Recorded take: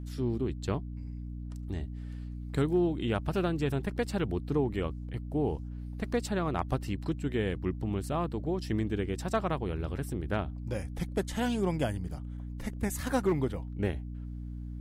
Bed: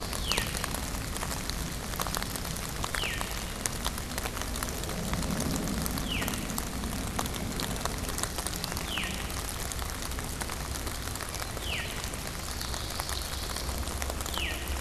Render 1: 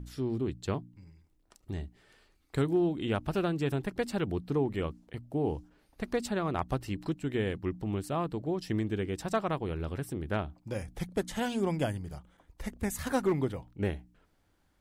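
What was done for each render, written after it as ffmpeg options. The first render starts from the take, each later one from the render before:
-af "bandreject=f=60:t=h:w=4,bandreject=f=120:t=h:w=4,bandreject=f=180:t=h:w=4,bandreject=f=240:t=h:w=4,bandreject=f=300:t=h:w=4"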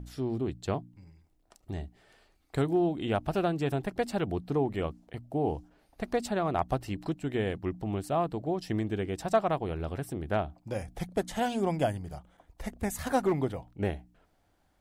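-af "equalizer=f=700:t=o:w=0.52:g=8"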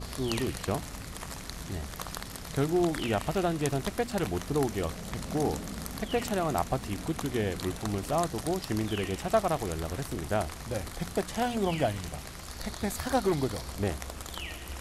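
-filter_complex "[1:a]volume=-6.5dB[a];[0:a][a]amix=inputs=2:normalize=0"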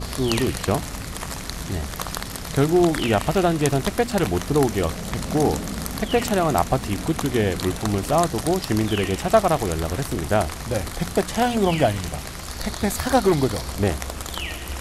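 -af "volume=9dB"

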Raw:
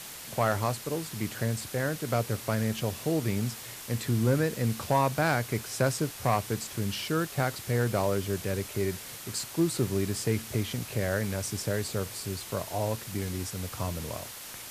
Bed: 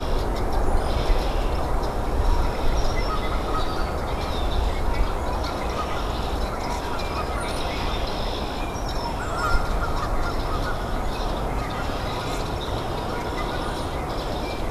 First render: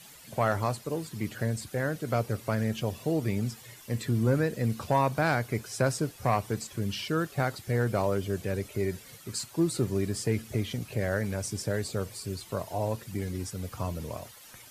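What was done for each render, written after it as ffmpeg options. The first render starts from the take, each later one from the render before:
-af "afftdn=nr=12:nf=-43"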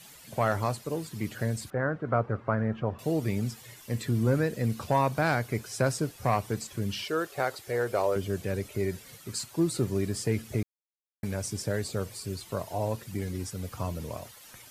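-filter_complex "[0:a]asettb=1/sr,asplit=3[a][b][c];[a]atrim=end=1.704[d];[b]atrim=start=1.7:end=2.99,asetpts=PTS-STARTPTS,afade=t=in:d=0.004:c=qsin,afade=t=out:st=1.286:d=0.004:c=qsin,lowpass=f=1.3k:t=q:w=1.9[e];[c]atrim=start=2.986[f];[d][e]acrossfade=d=0.004:c1=hsin:c2=qsin[g];[g][f]acrossfade=d=0.004:c1=qsin:c2=hsin,asettb=1/sr,asplit=3[h][i][j];[h]atrim=end=7.044[k];[i]atrim=start=7.04:end=8.16,asetpts=PTS-STARTPTS,afade=t=in:d=0.004:c=qsin,afade=t=out:st=1.116:d=0.004:c=qsin,lowshelf=f=300:t=q:w=1.5:g=-10[l];[j]atrim=start=8.156[m];[k][l]acrossfade=d=0.004:c1=hsin:c2=qsin[n];[n][m]acrossfade=d=0.004:c1=qsin:c2=hsin,asplit=3[o][p][q];[o]atrim=end=10.63,asetpts=PTS-STARTPTS,afade=t=out:st=10.626:d=0.004:c=hsin[r];[p]atrim=start=10.63:end=11.23,asetpts=PTS-STARTPTS,volume=0[s];[q]atrim=start=11.23,asetpts=PTS-STARTPTS,afade=t=in:d=0.004:c=hsin[t];[r][s][t]concat=n=3:v=0:a=1"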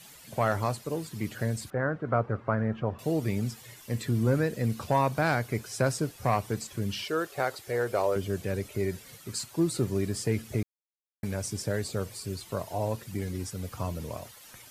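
-af anull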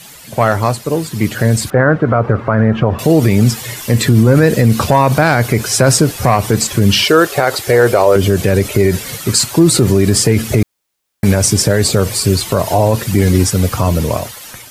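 -af "dynaudnorm=f=580:g=5:m=10dB,alimiter=level_in=14dB:limit=-1dB:release=50:level=0:latency=1"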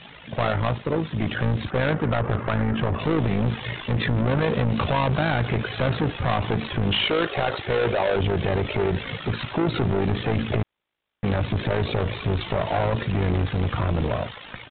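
-af "aresample=8000,asoftclip=type=tanh:threshold=-17dB,aresample=44100,tremolo=f=54:d=0.621"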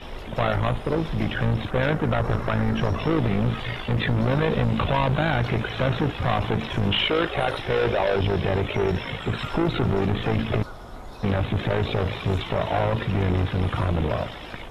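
-filter_complex "[1:a]volume=-13dB[a];[0:a][a]amix=inputs=2:normalize=0"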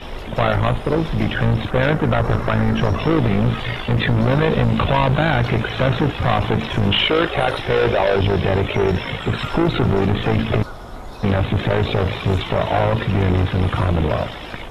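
-af "volume=5.5dB"

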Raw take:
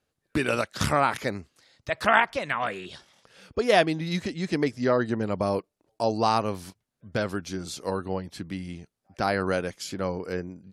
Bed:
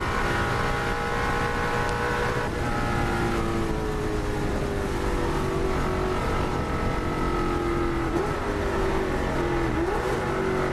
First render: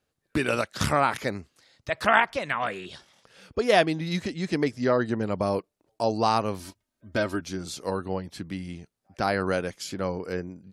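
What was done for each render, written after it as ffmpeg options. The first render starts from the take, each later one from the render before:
-filter_complex "[0:a]asettb=1/sr,asplit=3[a][b][c];[a]atrim=end=6.594[d];[b]atrim=start=6.59:end=7.41,asetpts=PTS-STARTPTS,afade=t=in:d=0.004:c=qsin,afade=t=out:st=0.816:d=0.004:c=qsin,aecho=1:1:3.2:0.65,atrim=end_sample=36162[e];[c]atrim=start=7.406[f];[d][e]acrossfade=d=0.004:c1=hsin:c2=qsin[g];[g][f]acrossfade=d=0.004:c1=qsin:c2=hsin"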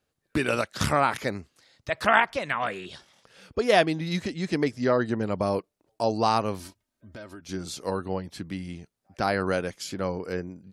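-filter_complex "[0:a]asettb=1/sr,asplit=3[a][b][c];[a]atrim=end=6.674[d];[b]atrim=start=6.67:end=7.49,asetpts=PTS-STARTPTS,afade=t=in:d=0.004:c=qsin,afade=t=out:st=0.816:d=0.004:c=qsin,acompressor=threshold=-44dB:ratio=3:attack=3.2:release=140:knee=1:detection=peak[e];[c]atrim=start=7.486[f];[d][e]acrossfade=d=0.004:c1=hsin:c2=qsin[g];[g][f]acrossfade=d=0.004:c1=qsin:c2=hsin"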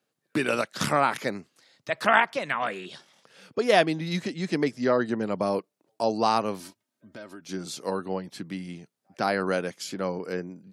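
-af "highpass=f=140:w=0.5412,highpass=f=140:w=1.3066"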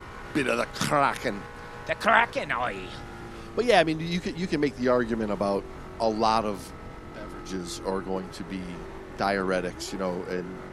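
-filter_complex "[1:a]volume=-15.5dB[a];[0:a][a]amix=inputs=2:normalize=0"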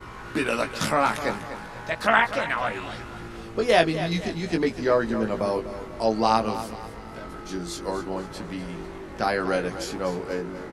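-filter_complex "[0:a]asplit=2[a][b];[b]adelay=18,volume=-5dB[c];[a][c]amix=inputs=2:normalize=0,aecho=1:1:247|494|741|988:0.251|0.105|0.0443|0.0186"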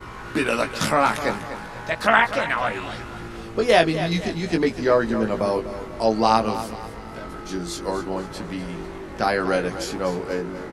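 -af "volume=3dB,alimiter=limit=-2dB:level=0:latency=1"

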